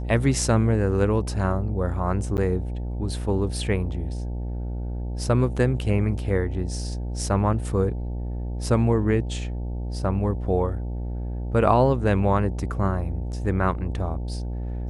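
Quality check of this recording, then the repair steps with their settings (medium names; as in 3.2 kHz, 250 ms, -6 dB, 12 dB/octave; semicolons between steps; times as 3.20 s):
buzz 60 Hz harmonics 15 -29 dBFS
2.37–2.38 s: dropout 9.2 ms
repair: de-hum 60 Hz, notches 15; interpolate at 2.37 s, 9.2 ms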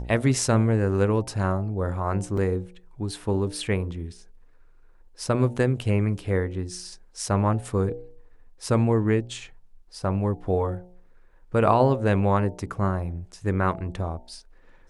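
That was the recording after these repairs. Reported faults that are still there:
nothing left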